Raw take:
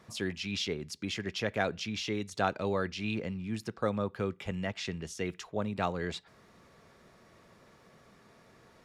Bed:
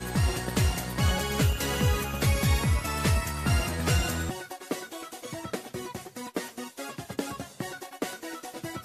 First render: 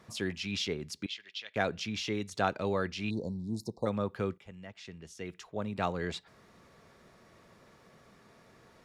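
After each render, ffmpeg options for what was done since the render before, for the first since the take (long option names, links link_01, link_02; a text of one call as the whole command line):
ffmpeg -i in.wav -filter_complex "[0:a]asettb=1/sr,asplit=3[link_01][link_02][link_03];[link_01]atrim=end=1.064[link_04];[link_02]atrim=start=1.06:end=1.56,asetpts=PTS-STARTPTS,afade=type=in:duration=0.004:curve=qsin,afade=type=out:start_time=0.496:duration=0.004:curve=qsin,bandpass=frequency=3500:width_type=q:width=2.4[link_05];[link_03]atrim=start=1.556[link_06];[link_04][link_05]acrossfade=duration=0.004:curve1=hsin:curve2=qsin[link_07];[link_07][link_06]acrossfade=duration=0.004:curve1=qsin:curve2=hsin,asplit=3[link_08][link_09][link_10];[link_08]afade=type=out:start_time=3.09:duration=0.02[link_11];[link_09]asuperstop=centerf=2000:order=20:qfactor=0.7,afade=type=in:start_time=3.09:duration=0.02,afade=type=out:start_time=3.85:duration=0.02[link_12];[link_10]afade=type=in:start_time=3.85:duration=0.02[link_13];[link_11][link_12][link_13]amix=inputs=3:normalize=0,asplit=2[link_14][link_15];[link_14]atrim=end=4.38,asetpts=PTS-STARTPTS,afade=type=out:start_time=4.376:duration=0.004:curve=hsin:silence=0.211349[link_16];[link_15]atrim=start=4.38,asetpts=PTS-STARTPTS,afade=type=in:duration=1.5:curve=qua:silence=0.211349[link_17];[link_16][link_17]concat=n=2:v=0:a=1" out.wav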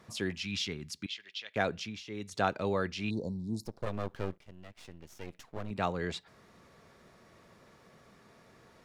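ffmpeg -i in.wav -filter_complex "[0:a]asettb=1/sr,asplit=3[link_01][link_02][link_03];[link_01]atrim=end=0.434[link_04];[link_02]atrim=start=0.43:end=1.09,asetpts=PTS-STARTPTS,afade=type=in:duration=0.004:curve=qsin,afade=type=out:start_time=0.656:duration=0.004:curve=qsin,equalizer=frequency=520:width=1.2:gain=-10.5[link_05];[link_03]atrim=start=1.086[link_06];[link_04][link_05]acrossfade=duration=0.004:curve1=hsin:curve2=qsin[link_07];[link_07][link_06]acrossfade=duration=0.004:curve1=qsin:curve2=hsin,asettb=1/sr,asplit=3[link_08][link_09][link_10];[link_08]atrim=end=3.654[link_11];[link_09]atrim=start=3.65:end=5.71,asetpts=PTS-STARTPTS,afade=type=in:duration=0.004:curve=qsin,afade=type=out:start_time=2.056:duration=0.004:curve=qsin,aeval=exprs='max(val(0),0)':channel_layout=same[link_12];[link_10]atrim=start=5.706[link_13];[link_11][link_12]acrossfade=duration=0.004:curve1=hsin:curve2=qsin[link_14];[link_14][link_13]acrossfade=duration=0.004:curve1=qsin:curve2=hsin,asplit=2[link_15][link_16];[link_15]atrim=end=2.05,asetpts=PTS-STARTPTS,afade=type=out:start_time=1.73:duration=0.32:silence=0.211349[link_17];[link_16]atrim=start=2.05,asetpts=PTS-STARTPTS,afade=type=in:duration=0.32:silence=0.211349[link_18];[link_17][link_18]concat=n=2:v=0:a=1" out.wav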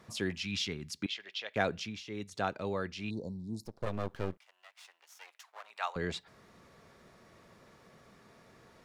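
ffmpeg -i in.wav -filter_complex "[0:a]asettb=1/sr,asplit=3[link_01][link_02][link_03];[link_01]atrim=end=1.024[link_04];[link_02]atrim=start=1.02:end=1.54,asetpts=PTS-STARTPTS,afade=type=in:duration=0.004:curve=qsin,afade=type=out:start_time=0.516:duration=0.004:curve=qsin,equalizer=frequency=630:width=0.58:gain=11.5[link_05];[link_03]atrim=start=1.536[link_06];[link_04][link_05]acrossfade=duration=0.004:curve1=hsin:curve2=qsin[link_07];[link_07][link_06]acrossfade=duration=0.004:curve1=qsin:curve2=hsin,asettb=1/sr,asplit=3[link_08][link_09][link_10];[link_08]atrim=end=4.374[link_11];[link_09]atrim=start=4.37:end=5.96,asetpts=PTS-STARTPTS,afade=type=in:duration=0.004:curve=qsin,afade=type=out:start_time=1.586:duration=0.004:curve=qsin,highpass=frequency=820:width=0.5412,highpass=frequency=820:width=1.3066[link_12];[link_10]atrim=start=5.956[link_13];[link_11][link_12]acrossfade=duration=0.004:curve1=hsin:curve2=qsin[link_14];[link_14][link_13]acrossfade=duration=0.004:curve1=qsin:curve2=hsin,asplit=3[link_15][link_16][link_17];[link_15]atrim=end=2.242[link_18];[link_16]atrim=start=2.238:end=3.812,asetpts=PTS-STARTPTS,volume=-4dB[link_19];[link_17]atrim=start=3.808[link_20];[link_18][link_19]acrossfade=duration=0.004:curve1=hsin:curve2=hsin[link_21];[link_21][link_20]acrossfade=duration=0.004:curve1=hsin:curve2=hsin" out.wav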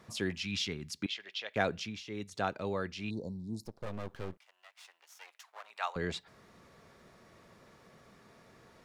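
ffmpeg -i in.wav -filter_complex "[0:a]asettb=1/sr,asplit=3[link_01][link_02][link_03];[link_01]atrim=end=3.734[link_04];[link_02]atrim=start=3.73:end=4.8,asetpts=PTS-STARTPTS,afade=type=in:duration=0.004:curve=qsin,afade=type=out:start_time=1.066:duration=0.004:curve=qsin,aeval=exprs='(tanh(20*val(0)+0.3)-tanh(0.3))/20':channel_layout=same[link_05];[link_03]atrim=start=4.796[link_06];[link_04][link_05]acrossfade=duration=0.004:curve1=hsin:curve2=qsin[link_07];[link_07][link_06]acrossfade=duration=0.004:curve1=qsin:curve2=hsin" out.wav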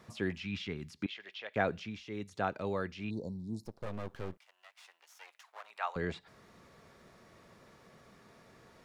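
ffmpeg -i in.wav -filter_complex "[0:a]acrossover=split=2700[link_01][link_02];[link_02]acompressor=threshold=-55dB:ratio=4:attack=1:release=60[link_03];[link_01][link_03]amix=inputs=2:normalize=0" out.wav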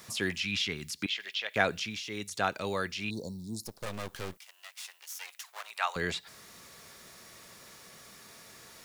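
ffmpeg -i in.wav -af "crystalizer=i=8.5:c=0" out.wav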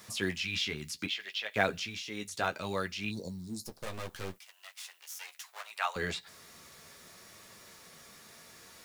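ffmpeg -i in.wav -filter_complex "[0:a]asplit=2[link_01][link_02];[link_02]acrusher=bits=3:mode=log:mix=0:aa=0.000001,volume=-12dB[link_03];[link_01][link_03]amix=inputs=2:normalize=0,flanger=delay=9.2:depth=4.7:regen=-30:speed=0.67:shape=triangular" out.wav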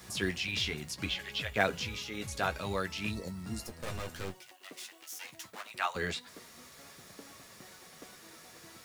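ffmpeg -i in.wav -i bed.wav -filter_complex "[1:a]volume=-20.5dB[link_01];[0:a][link_01]amix=inputs=2:normalize=0" out.wav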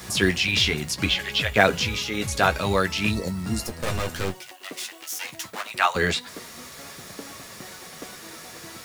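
ffmpeg -i in.wav -af "volume=12dB,alimiter=limit=-2dB:level=0:latency=1" out.wav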